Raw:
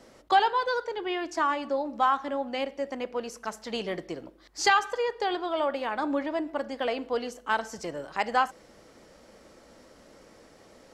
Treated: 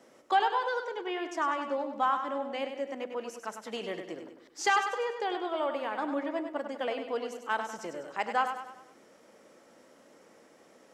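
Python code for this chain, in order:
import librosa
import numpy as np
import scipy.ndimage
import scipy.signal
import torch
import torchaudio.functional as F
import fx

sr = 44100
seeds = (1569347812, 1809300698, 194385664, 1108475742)

y = scipy.signal.sosfilt(scipy.signal.butter(2, 200.0, 'highpass', fs=sr, output='sos'), x)
y = fx.peak_eq(y, sr, hz=4400.0, db=-7.0, octaves=0.44)
y = fx.echo_feedback(y, sr, ms=99, feedback_pct=47, wet_db=-8.0)
y = y * 10.0 ** (-4.0 / 20.0)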